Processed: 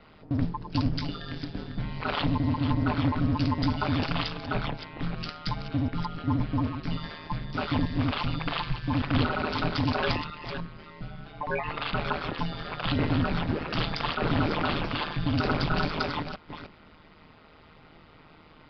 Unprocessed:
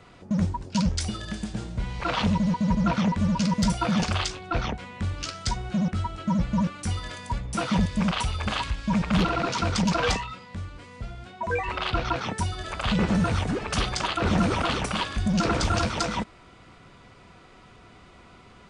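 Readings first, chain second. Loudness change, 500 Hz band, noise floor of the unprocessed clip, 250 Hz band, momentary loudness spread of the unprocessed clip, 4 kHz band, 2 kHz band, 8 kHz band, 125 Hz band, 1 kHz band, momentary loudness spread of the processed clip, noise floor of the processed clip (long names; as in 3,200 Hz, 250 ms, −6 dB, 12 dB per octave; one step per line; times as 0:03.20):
−3.0 dB, −2.5 dB, −51 dBFS, −3.5 dB, 10 LU, −3.0 dB, −1.5 dB, below −25 dB, −1.5 dB, −2.5 dB, 10 LU, −54 dBFS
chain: delay that plays each chunk backwards 303 ms, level −9 dB
ring modulation 78 Hz
downsampling to 11,025 Hz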